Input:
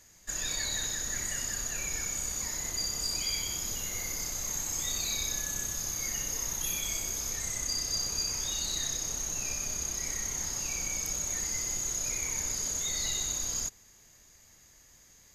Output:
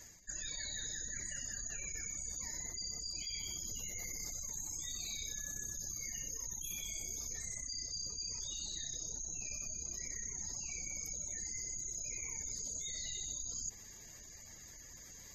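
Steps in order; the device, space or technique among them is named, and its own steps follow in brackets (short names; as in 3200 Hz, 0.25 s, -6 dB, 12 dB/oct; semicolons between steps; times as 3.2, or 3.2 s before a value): spectral gate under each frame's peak -20 dB strong; compression on the reversed sound (reverse; compressor 5:1, threshold -47 dBFS, peak gain reduction 17 dB; reverse); gain +5.5 dB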